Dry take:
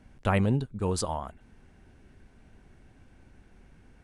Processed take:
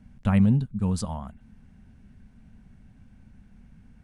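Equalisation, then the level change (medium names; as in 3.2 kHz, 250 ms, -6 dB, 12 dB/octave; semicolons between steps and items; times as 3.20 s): resonant low shelf 270 Hz +7 dB, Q 3; -4.0 dB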